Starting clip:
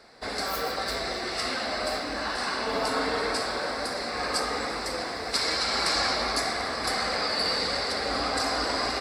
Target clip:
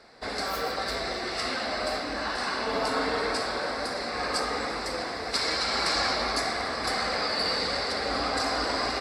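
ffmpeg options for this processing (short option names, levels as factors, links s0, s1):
-af "highshelf=f=9600:g=-8"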